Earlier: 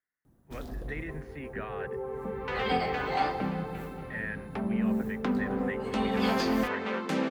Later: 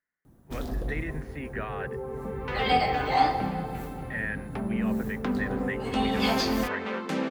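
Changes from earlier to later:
speech +4.0 dB; first sound +7.0 dB

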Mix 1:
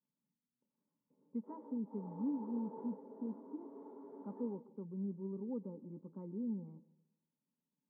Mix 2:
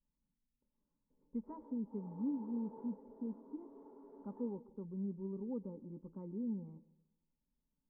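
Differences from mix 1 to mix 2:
background -4.5 dB; master: remove HPF 130 Hz 24 dB/oct

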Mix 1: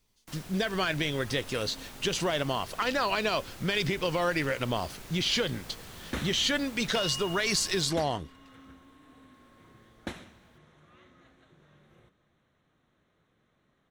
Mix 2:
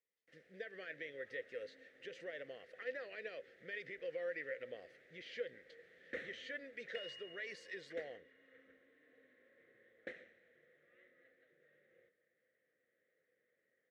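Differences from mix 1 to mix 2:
speech -8.5 dB; first sound -10.0 dB; master: add double band-pass 970 Hz, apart 1.9 oct

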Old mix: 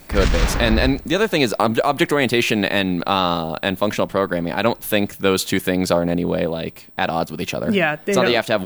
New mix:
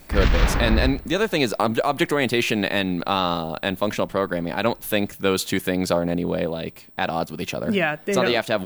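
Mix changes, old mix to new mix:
speech -3.5 dB; background: add LPF 3900 Hz 12 dB/oct

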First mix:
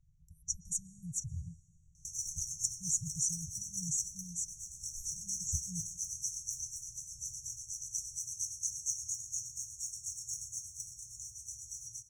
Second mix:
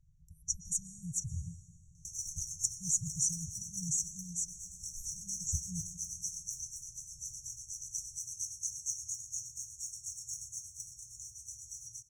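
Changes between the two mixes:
speech: send +10.0 dB; background: send -8.5 dB

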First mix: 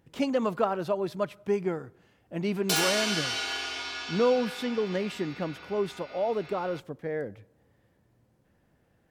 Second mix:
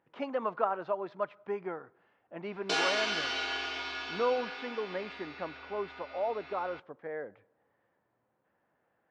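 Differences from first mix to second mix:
speech: add band-pass 1100 Hz, Q 0.98; master: add Gaussian blur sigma 1.8 samples

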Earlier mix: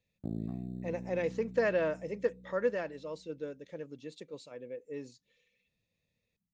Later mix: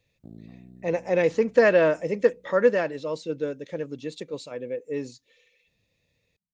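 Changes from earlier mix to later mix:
speech +11.0 dB; background -8.0 dB

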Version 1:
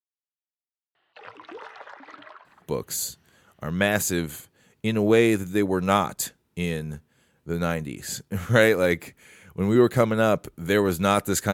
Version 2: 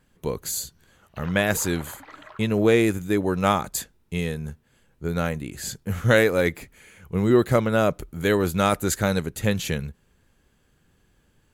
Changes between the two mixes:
speech: entry -2.45 s; master: remove HPF 98 Hz 12 dB/oct

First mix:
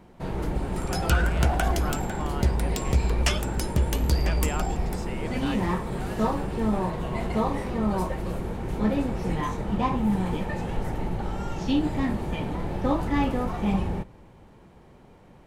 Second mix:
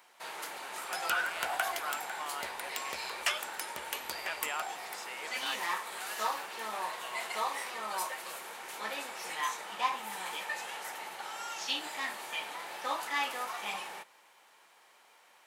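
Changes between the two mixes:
first sound: add tilt +2.5 dB/oct; second sound: add bell 5900 Hz -8 dB 1.5 oct; master: add HPF 1000 Hz 12 dB/oct

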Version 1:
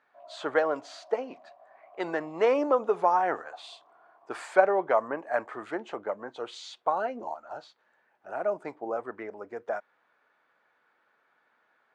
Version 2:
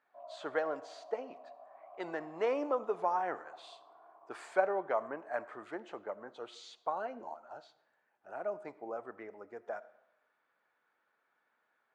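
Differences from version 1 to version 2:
speech -9.0 dB; reverb: on, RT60 0.85 s

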